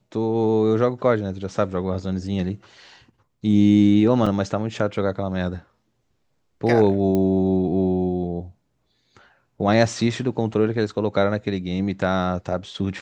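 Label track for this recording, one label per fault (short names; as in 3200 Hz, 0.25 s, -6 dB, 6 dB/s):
4.260000	4.260000	gap 4.8 ms
7.150000	7.150000	pop -12 dBFS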